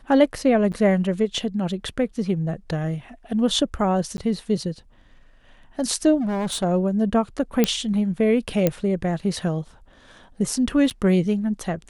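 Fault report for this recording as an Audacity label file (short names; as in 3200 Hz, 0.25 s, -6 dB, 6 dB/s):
0.720000	0.730000	gap 7.9 ms
4.170000	4.180000	gap 11 ms
6.200000	6.640000	clipped -22 dBFS
7.640000	7.640000	pop -4 dBFS
8.670000	8.670000	pop -6 dBFS
10.900000	10.910000	gap 7.6 ms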